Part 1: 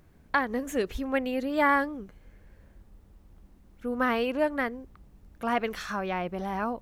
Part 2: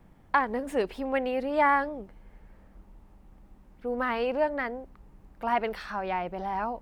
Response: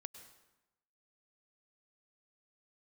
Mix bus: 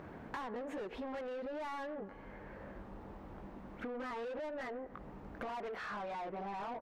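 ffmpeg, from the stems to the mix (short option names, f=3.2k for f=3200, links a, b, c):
-filter_complex "[0:a]equalizer=f=13k:t=o:w=2.9:g=-13,acompressor=threshold=-40dB:ratio=2.5,volume=-6dB,asplit=2[a][b];[b]volume=-9dB[c];[1:a]highshelf=f=4.5k:g=-10.5,adelay=20,volume=-13.5dB,asplit=2[d][e];[e]apad=whole_len=300461[f];[a][f]sidechaincompress=threshold=-43dB:ratio=8:attack=16:release=1250[g];[2:a]atrim=start_sample=2205[h];[c][h]afir=irnorm=-1:irlink=0[i];[g][d][i]amix=inputs=3:normalize=0,asplit=2[j][k];[k]highpass=f=720:p=1,volume=31dB,asoftclip=type=tanh:threshold=-23dB[l];[j][l]amix=inputs=2:normalize=0,lowpass=f=1.4k:p=1,volume=-6dB,acompressor=threshold=-41dB:ratio=6"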